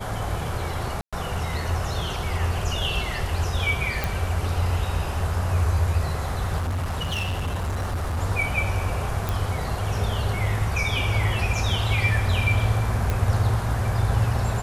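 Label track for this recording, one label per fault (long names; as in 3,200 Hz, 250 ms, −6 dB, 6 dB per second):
1.010000	1.130000	drop-out 116 ms
4.040000	4.040000	click
6.580000	8.190000	clipping −23 dBFS
9.290000	9.290000	click
13.100000	13.100000	click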